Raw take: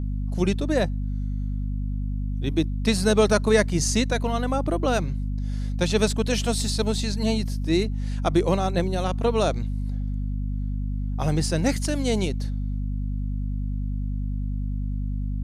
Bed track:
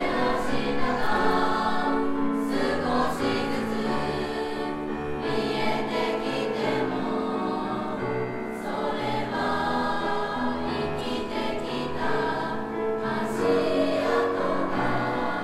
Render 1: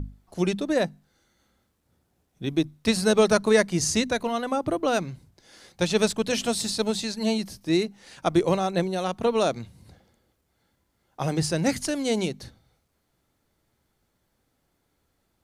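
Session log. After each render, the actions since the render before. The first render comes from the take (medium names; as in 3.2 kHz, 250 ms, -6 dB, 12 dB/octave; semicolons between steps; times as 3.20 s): hum notches 50/100/150/200/250 Hz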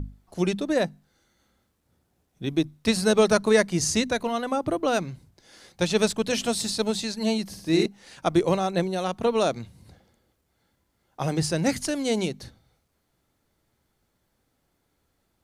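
7.45–7.86 s: flutter echo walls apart 9.5 m, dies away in 0.75 s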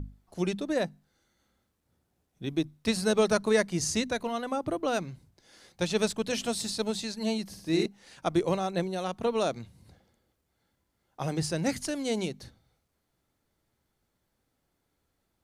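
trim -5 dB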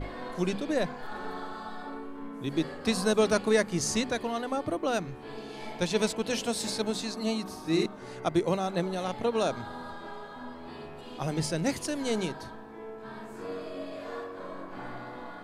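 add bed track -15 dB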